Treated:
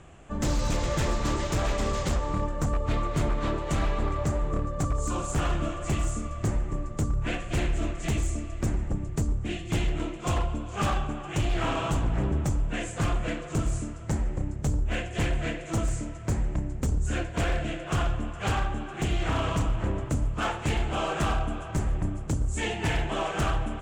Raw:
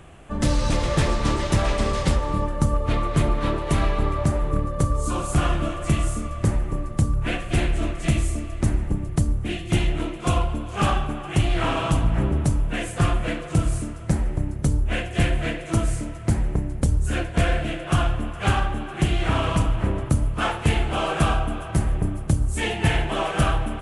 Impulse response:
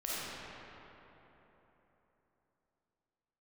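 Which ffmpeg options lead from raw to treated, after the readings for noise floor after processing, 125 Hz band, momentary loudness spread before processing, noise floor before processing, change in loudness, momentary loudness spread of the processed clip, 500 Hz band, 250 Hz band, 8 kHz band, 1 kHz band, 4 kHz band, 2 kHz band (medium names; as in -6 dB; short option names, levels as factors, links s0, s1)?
-38 dBFS, -6.0 dB, 4 LU, -34 dBFS, -5.5 dB, 4 LU, -4.5 dB, -5.5 dB, -3.5 dB, -5.0 dB, -5.5 dB, -5.0 dB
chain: -af "lowpass=f=7300:t=q:w=4.1,aeval=exprs='0.178*(abs(mod(val(0)/0.178+3,4)-2)-1)':c=same,aemphasis=mode=reproduction:type=cd,volume=0.596"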